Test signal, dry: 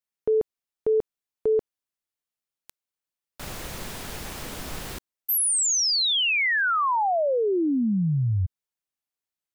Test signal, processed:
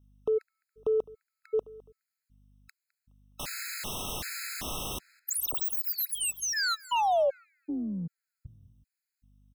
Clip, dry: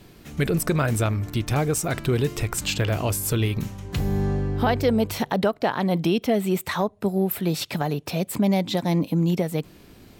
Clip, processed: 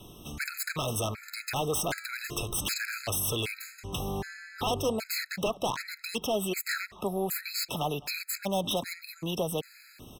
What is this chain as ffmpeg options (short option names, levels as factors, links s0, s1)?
-filter_complex "[0:a]tiltshelf=f=970:g=-3.5,acrossover=split=450[s0][s1];[s0]acompressor=threshold=0.0158:ratio=6:attack=2.2:release=22[s2];[s1]aeval=exprs='0.0631*(abs(mod(val(0)/0.0631+3,4)-2)-1)':c=same[s3];[s2][s3]amix=inputs=2:normalize=0,aeval=exprs='val(0)+0.000794*(sin(2*PI*50*n/s)+sin(2*PI*2*50*n/s)/2+sin(2*PI*3*50*n/s)/3+sin(2*PI*4*50*n/s)/4+sin(2*PI*5*50*n/s)/5)':c=same,asplit=2[s4][s5];[s5]asoftclip=type=tanh:threshold=0.0335,volume=0.299[s6];[s4][s6]amix=inputs=2:normalize=0,asplit=2[s7][s8];[s8]adelay=209,lowpass=f=3300:p=1,volume=0.0841,asplit=2[s9][s10];[s10]adelay=209,lowpass=f=3300:p=1,volume=0.37,asplit=2[s11][s12];[s12]adelay=209,lowpass=f=3300:p=1,volume=0.37[s13];[s7][s9][s11][s13]amix=inputs=4:normalize=0,afftfilt=real='re*gt(sin(2*PI*1.3*pts/sr)*(1-2*mod(floor(b*sr/1024/1300),2)),0)':imag='im*gt(sin(2*PI*1.3*pts/sr)*(1-2*mod(floor(b*sr/1024/1300),2)),0)':win_size=1024:overlap=0.75"